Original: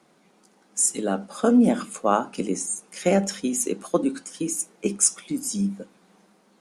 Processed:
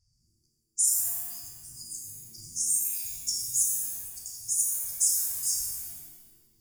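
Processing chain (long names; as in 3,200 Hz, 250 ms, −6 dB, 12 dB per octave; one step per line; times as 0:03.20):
brickwall limiter −14.5 dBFS, peak gain reduction 10 dB
low-pass that shuts in the quiet parts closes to 1,900 Hz, open at −24.5 dBFS
reversed playback
upward compression, threshold −33 dBFS
reversed playback
brick-wall band-stop 120–4,500 Hz
reverb with rising layers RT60 1.1 s, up +7 semitones, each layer −2 dB, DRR −0.5 dB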